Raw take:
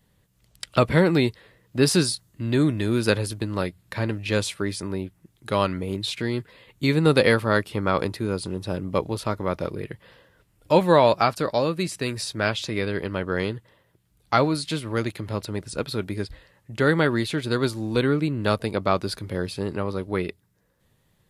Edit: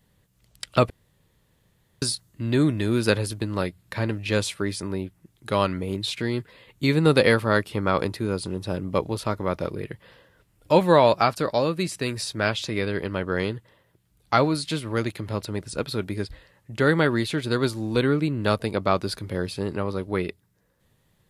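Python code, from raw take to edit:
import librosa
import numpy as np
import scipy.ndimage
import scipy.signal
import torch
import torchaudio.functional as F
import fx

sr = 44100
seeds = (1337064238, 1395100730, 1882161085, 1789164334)

y = fx.edit(x, sr, fx.room_tone_fill(start_s=0.9, length_s=1.12), tone=tone)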